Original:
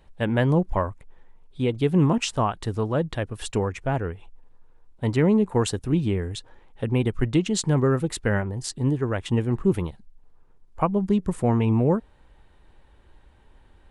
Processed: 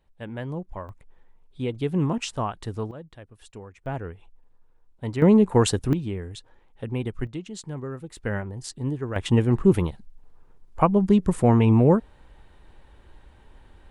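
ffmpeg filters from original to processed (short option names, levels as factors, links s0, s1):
-af "asetnsamples=n=441:p=0,asendcmd='0.89 volume volume -4.5dB;2.91 volume volume -17dB;3.86 volume volume -6dB;5.22 volume volume 3.5dB;5.93 volume volume -6dB;7.27 volume volume -13dB;8.17 volume volume -5dB;9.16 volume volume 3.5dB',volume=0.251"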